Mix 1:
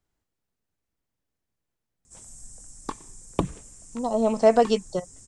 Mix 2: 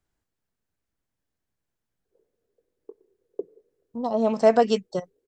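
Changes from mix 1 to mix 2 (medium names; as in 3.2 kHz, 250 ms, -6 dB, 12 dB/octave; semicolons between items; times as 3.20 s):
speech: add peaking EQ 1.6 kHz +4 dB 0.21 oct; background: add Butterworth band-pass 430 Hz, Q 3.7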